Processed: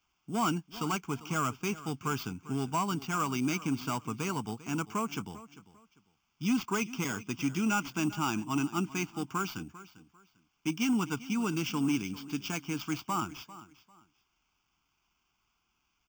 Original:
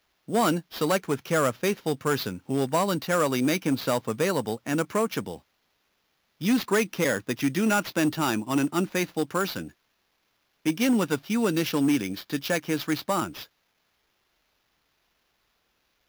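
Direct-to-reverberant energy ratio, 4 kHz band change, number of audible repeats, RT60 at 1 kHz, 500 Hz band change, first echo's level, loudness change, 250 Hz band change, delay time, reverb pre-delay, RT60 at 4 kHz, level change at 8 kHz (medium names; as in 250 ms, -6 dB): no reverb, -6.5 dB, 2, no reverb, -13.5 dB, -17.0 dB, -6.5 dB, -6.0 dB, 397 ms, no reverb, no reverb, -5.0 dB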